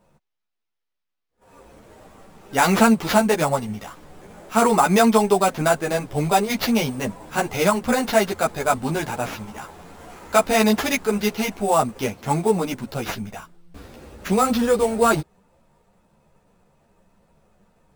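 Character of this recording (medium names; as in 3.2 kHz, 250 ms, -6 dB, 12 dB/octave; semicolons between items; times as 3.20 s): aliases and images of a low sample rate 8.6 kHz, jitter 0%; a shimmering, thickened sound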